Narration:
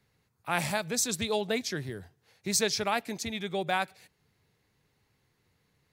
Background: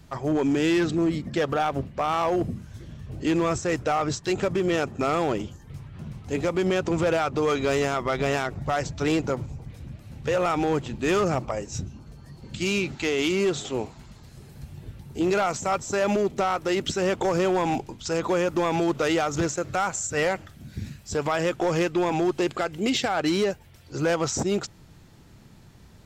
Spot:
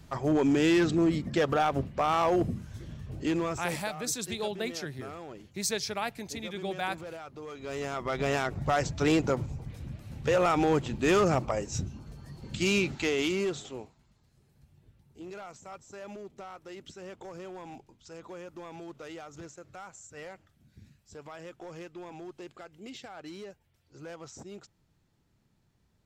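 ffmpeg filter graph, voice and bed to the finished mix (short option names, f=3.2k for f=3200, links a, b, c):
-filter_complex "[0:a]adelay=3100,volume=-4dB[a];[1:a]volume=16.5dB,afade=t=out:st=2.92:d=0.95:silence=0.133352,afade=t=in:st=7.57:d=1.07:silence=0.125893,afade=t=out:st=12.81:d=1.16:silence=0.112202[b];[a][b]amix=inputs=2:normalize=0"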